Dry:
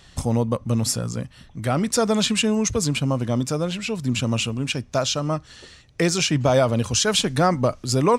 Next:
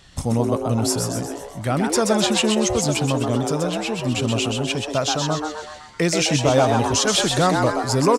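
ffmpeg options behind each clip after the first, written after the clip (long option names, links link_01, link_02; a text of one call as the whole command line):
ffmpeg -i in.wav -filter_complex "[0:a]asplit=8[link_01][link_02][link_03][link_04][link_05][link_06][link_07][link_08];[link_02]adelay=128,afreqshift=150,volume=-4.5dB[link_09];[link_03]adelay=256,afreqshift=300,volume=-10.2dB[link_10];[link_04]adelay=384,afreqshift=450,volume=-15.9dB[link_11];[link_05]adelay=512,afreqshift=600,volume=-21.5dB[link_12];[link_06]adelay=640,afreqshift=750,volume=-27.2dB[link_13];[link_07]adelay=768,afreqshift=900,volume=-32.9dB[link_14];[link_08]adelay=896,afreqshift=1050,volume=-38.6dB[link_15];[link_01][link_09][link_10][link_11][link_12][link_13][link_14][link_15]amix=inputs=8:normalize=0" out.wav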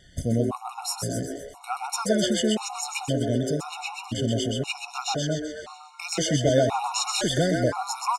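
ffmpeg -i in.wav -af "afftfilt=real='re*gt(sin(2*PI*0.97*pts/sr)*(1-2*mod(floor(b*sr/1024/730),2)),0)':imag='im*gt(sin(2*PI*0.97*pts/sr)*(1-2*mod(floor(b*sr/1024/730),2)),0)':win_size=1024:overlap=0.75,volume=-3dB" out.wav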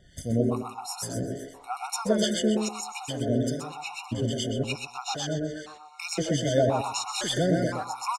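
ffmpeg -i in.wav -filter_complex "[0:a]acrossover=split=1100[link_01][link_02];[link_01]aeval=exprs='val(0)*(1-0.7/2+0.7/2*cos(2*PI*2.4*n/s))':channel_layout=same[link_03];[link_02]aeval=exprs='val(0)*(1-0.7/2-0.7/2*cos(2*PI*2.4*n/s))':channel_layout=same[link_04];[link_03][link_04]amix=inputs=2:normalize=0,asplit=2[link_05][link_06];[link_06]adelay=117,lowpass=frequency=990:poles=1,volume=-5dB,asplit=2[link_07][link_08];[link_08]adelay=117,lowpass=frequency=990:poles=1,volume=0.2,asplit=2[link_09][link_10];[link_10]adelay=117,lowpass=frequency=990:poles=1,volume=0.2[link_11];[link_07][link_09][link_11]amix=inputs=3:normalize=0[link_12];[link_05][link_12]amix=inputs=2:normalize=0" out.wav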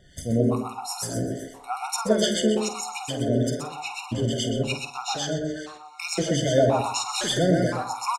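ffmpeg -i in.wav -filter_complex "[0:a]bandreject=frequency=50:width_type=h:width=6,bandreject=frequency=100:width_type=h:width=6,bandreject=frequency=150:width_type=h:width=6,bandreject=frequency=200:width_type=h:width=6,bandreject=frequency=250:width_type=h:width=6,bandreject=frequency=300:width_type=h:width=6,asplit=2[link_01][link_02];[link_02]adelay=49,volume=-10.5dB[link_03];[link_01][link_03]amix=inputs=2:normalize=0,volume=3dB" out.wav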